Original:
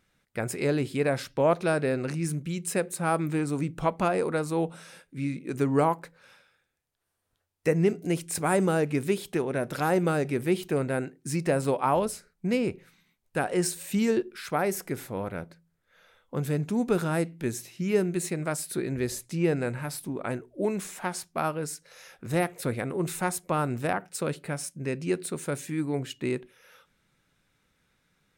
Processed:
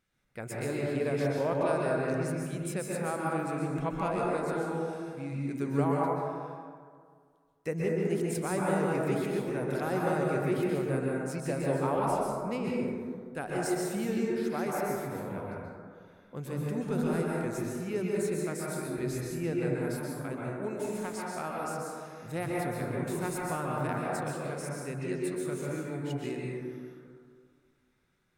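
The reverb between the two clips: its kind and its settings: plate-style reverb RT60 2 s, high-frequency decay 0.3×, pre-delay 0.115 s, DRR -4 dB; gain -9.5 dB

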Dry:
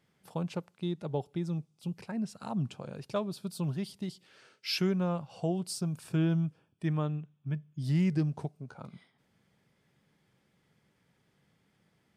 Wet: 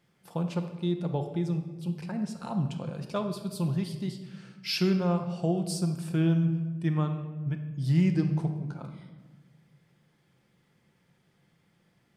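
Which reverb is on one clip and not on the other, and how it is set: shoebox room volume 880 m³, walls mixed, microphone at 0.84 m; gain +1.5 dB

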